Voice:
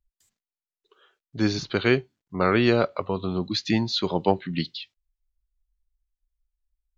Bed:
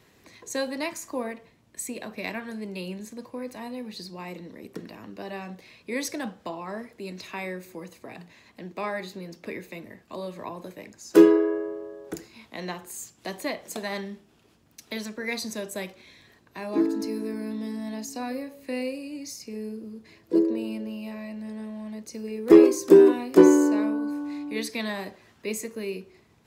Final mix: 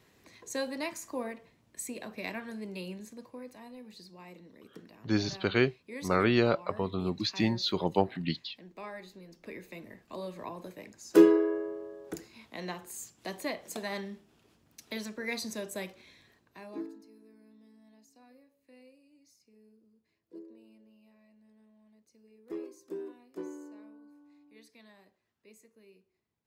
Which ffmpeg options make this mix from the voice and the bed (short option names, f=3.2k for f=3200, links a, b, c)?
-filter_complex "[0:a]adelay=3700,volume=-5dB[a];[1:a]volume=2.5dB,afade=t=out:st=2.78:d=0.85:silence=0.446684,afade=t=in:st=9.28:d=0.64:silence=0.421697,afade=t=out:st=15.95:d=1.07:silence=0.0794328[b];[a][b]amix=inputs=2:normalize=0"